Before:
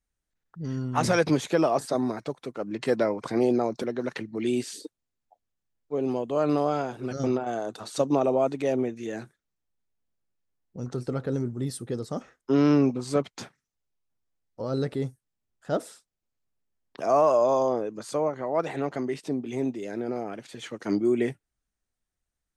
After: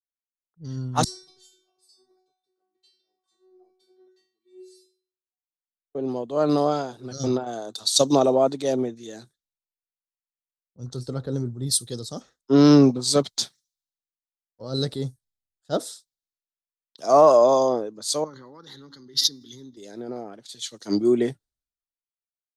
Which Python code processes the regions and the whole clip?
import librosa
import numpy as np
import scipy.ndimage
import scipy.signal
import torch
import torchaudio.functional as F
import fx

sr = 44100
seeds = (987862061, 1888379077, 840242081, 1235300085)

y = fx.chain(x, sr, fx.over_compress(threshold_db=-26.0, ratio=-0.5),
    fx.stiff_resonator(f0_hz=370.0, decay_s=0.8, stiffness=0.002),
    fx.echo_single(ms=167, db=-22.0), at=(1.04, 5.95))
y = fx.chain(y, sr, fx.fixed_phaser(hz=2500.0, stages=6),
    fx.comb_fb(f0_hz=280.0, decay_s=1.0, harmonics='all', damping=0.0, mix_pct=50),
    fx.pre_swell(db_per_s=24.0), at=(18.24, 19.77))
y = fx.high_shelf_res(y, sr, hz=3100.0, db=7.0, q=3.0)
y = fx.band_widen(y, sr, depth_pct=100)